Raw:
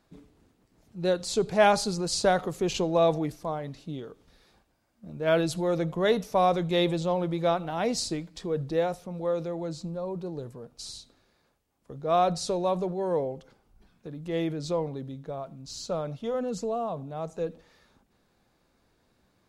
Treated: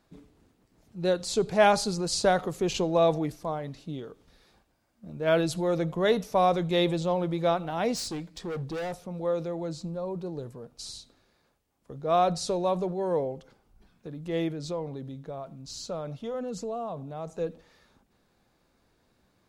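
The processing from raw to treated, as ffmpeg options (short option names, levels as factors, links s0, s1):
-filter_complex "[0:a]asettb=1/sr,asplit=3[s0][s1][s2];[s0]atrim=end=7.954[s3];[s1]atrim=start=7.95:end=9,asetpts=PTS-STARTPTS,afade=t=in:d=0.004:c=qsin,afade=t=out:st=1.046:d=0.004:c=qsin,asoftclip=type=hard:threshold=0.0282[s4];[s2]atrim=start=8.996[s5];[s3][s4]acrossfade=d=0.004:c1=hsin:c2=qsin[s6];[s6][s5]acrossfade=d=0.004:c1=qsin:c2=hsin,asettb=1/sr,asplit=3[s7][s8][s9];[s7]atrim=end=14.484[s10];[s8]atrim=start=14.48:end=17.27,asetpts=PTS-STARTPTS,afade=t=in:d=0.004:c=qsin,afade=t=out:st=2.786:d=0.004:c=qsin,acompressor=threshold=0.0158:ratio=1.5:attack=3.2:release=140:knee=1:detection=peak[s11];[s9]atrim=start=17.266[s12];[s10][s11]acrossfade=d=0.004:c1=hsin:c2=qsin[s13];[s13][s12]acrossfade=d=0.004:c1=qsin:c2=hsin"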